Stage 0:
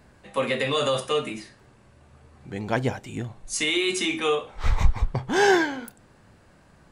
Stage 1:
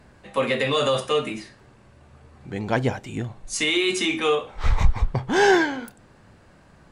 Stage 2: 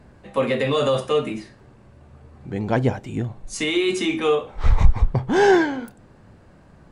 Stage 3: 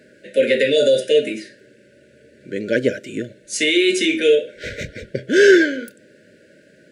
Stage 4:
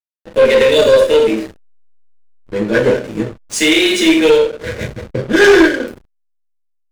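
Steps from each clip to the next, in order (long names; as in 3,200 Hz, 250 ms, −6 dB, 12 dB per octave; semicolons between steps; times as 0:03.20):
high-shelf EQ 10,000 Hz −8 dB; in parallel at −4 dB: soft clipping −14 dBFS, distortion −14 dB; on the sum: level −1.5 dB
tilt shelving filter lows +4 dB
brick-wall band-stop 640–1,400 Hz; high-pass filter 350 Hz 12 dB per octave; gain on a spectral selection 0:00.77–0:01.01, 1,500–3,400 Hz −8 dB; level +7 dB
coupled-rooms reverb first 0.46 s, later 1.6 s, from −24 dB, DRR −3 dB; tube saturation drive 6 dB, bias 0.3; slack as between gear wheels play −23.5 dBFS; level +3.5 dB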